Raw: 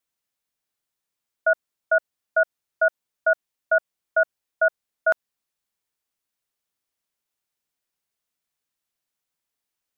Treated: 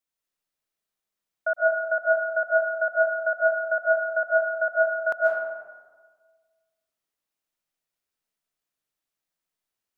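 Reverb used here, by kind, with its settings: digital reverb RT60 1.5 s, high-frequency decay 0.45×, pre-delay 0.1 s, DRR -2.5 dB; gain -6 dB

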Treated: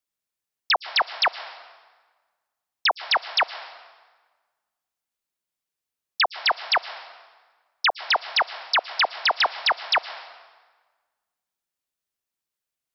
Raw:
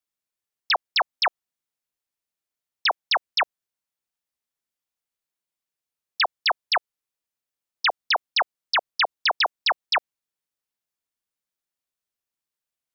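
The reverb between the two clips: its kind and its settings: plate-style reverb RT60 1.4 s, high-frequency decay 0.8×, pre-delay 0.1 s, DRR 14 dB; gain +1 dB

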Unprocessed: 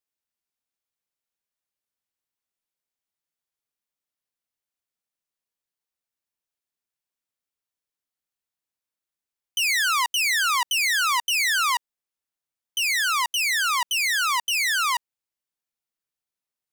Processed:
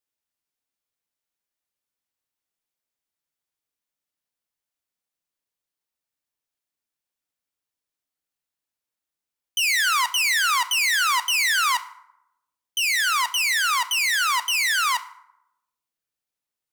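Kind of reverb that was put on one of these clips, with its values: FDN reverb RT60 0.84 s, low-frequency decay 1×, high-frequency decay 0.55×, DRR 11.5 dB; gain +1 dB

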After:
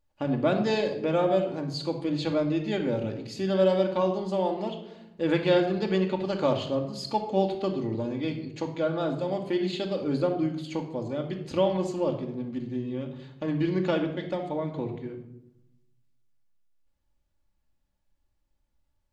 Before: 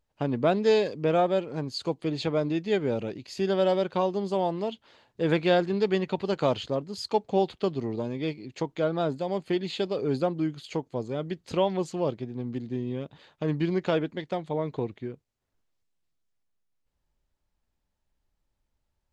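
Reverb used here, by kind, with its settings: shoebox room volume 2300 m³, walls furnished, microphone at 2.4 m; gain -2.5 dB

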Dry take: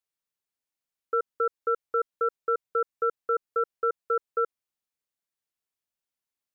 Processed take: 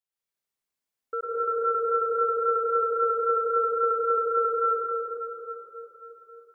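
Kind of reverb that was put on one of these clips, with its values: plate-style reverb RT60 3.9 s, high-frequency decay 0.65×, pre-delay 90 ms, DRR -8 dB; gain -5.5 dB

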